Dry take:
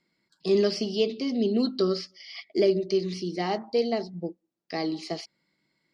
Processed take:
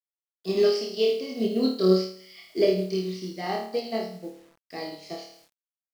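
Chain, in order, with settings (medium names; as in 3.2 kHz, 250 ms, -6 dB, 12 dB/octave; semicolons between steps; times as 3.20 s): 0.62–1.44 s: high-pass 420 Hz -> 180 Hz 12 dB/octave; flutter echo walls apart 4.6 m, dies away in 0.7 s; bit crusher 8-bit; upward expansion 1.5:1, over -35 dBFS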